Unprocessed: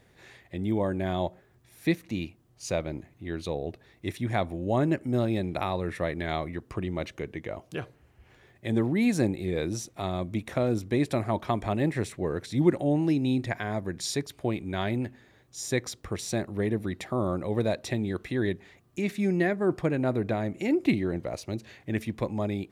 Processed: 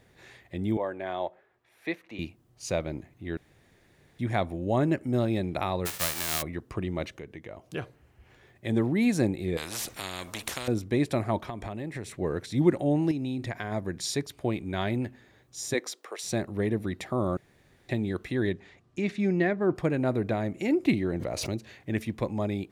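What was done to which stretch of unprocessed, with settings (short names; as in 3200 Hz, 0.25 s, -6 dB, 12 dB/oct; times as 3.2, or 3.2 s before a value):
0.77–2.19 three-band isolator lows -19 dB, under 390 Hz, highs -15 dB, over 3300 Hz
3.37–4.19 room tone
5.85–6.41 spectral whitening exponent 0.1
7.1–7.72 compressor 1.5:1, threshold -49 dBFS
9.57–10.68 spectral compressor 4:1
11.48–12.11 compressor, threshold -32 dBFS
13.11–13.72 compressor, threshold -28 dBFS
15.73–16.23 HPF 230 Hz -> 540 Hz 24 dB/oct
17.37–17.89 room tone
18.49–19.74 LPF 8100 Hz -> 4000 Hz
21.13–21.57 backwards sustainer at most 26 dB/s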